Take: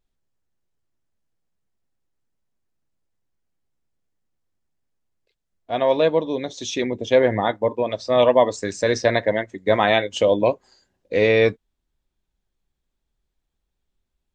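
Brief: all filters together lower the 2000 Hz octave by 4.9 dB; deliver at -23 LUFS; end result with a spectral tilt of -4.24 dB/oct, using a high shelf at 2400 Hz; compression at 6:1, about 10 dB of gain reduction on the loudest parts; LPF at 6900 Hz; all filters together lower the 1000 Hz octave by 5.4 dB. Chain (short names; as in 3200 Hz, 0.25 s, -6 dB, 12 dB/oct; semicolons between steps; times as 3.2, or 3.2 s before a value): LPF 6900 Hz; bell 1000 Hz -7.5 dB; bell 2000 Hz -5.5 dB; high shelf 2400 Hz +3.5 dB; compressor 6:1, threshold -24 dBFS; gain +6.5 dB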